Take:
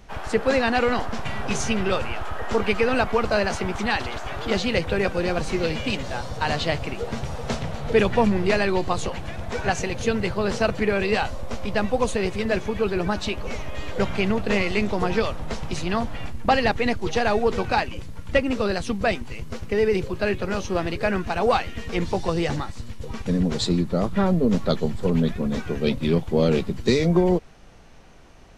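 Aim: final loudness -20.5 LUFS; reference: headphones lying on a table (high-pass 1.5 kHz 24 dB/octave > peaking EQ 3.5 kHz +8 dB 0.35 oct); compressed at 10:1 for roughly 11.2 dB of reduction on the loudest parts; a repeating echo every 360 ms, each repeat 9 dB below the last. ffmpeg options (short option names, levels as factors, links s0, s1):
-af "acompressor=threshold=0.0562:ratio=10,highpass=f=1500:w=0.5412,highpass=f=1500:w=1.3066,equalizer=f=3500:t=o:w=0.35:g=8,aecho=1:1:360|720|1080|1440:0.355|0.124|0.0435|0.0152,volume=5.96"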